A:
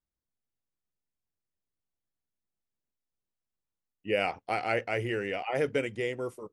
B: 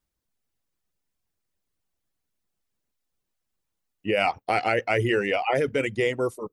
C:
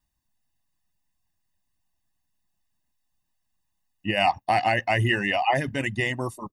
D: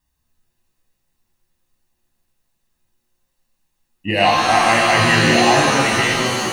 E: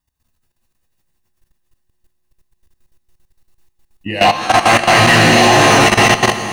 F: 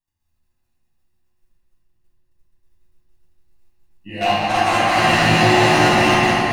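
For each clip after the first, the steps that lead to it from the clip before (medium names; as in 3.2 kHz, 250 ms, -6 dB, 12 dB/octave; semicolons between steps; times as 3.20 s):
reverb removal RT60 0.54 s; in parallel at +2 dB: compressor with a negative ratio -31 dBFS, ratio -0.5; on the sum: trim +1.5 dB
comb 1.1 ms, depth 86%
pitch-shifted reverb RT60 1.7 s, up +7 st, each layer -2 dB, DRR -1 dB; trim +4 dB
echo with a slow build-up 91 ms, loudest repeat 8, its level -14 dB; level held to a coarse grid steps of 14 dB; overload inside the chain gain 11 dB; trim +6.5 dB
reverberation RT60 3.0 s, pre-delay 6 ms, DRR -10.5 dB; trim -16 dB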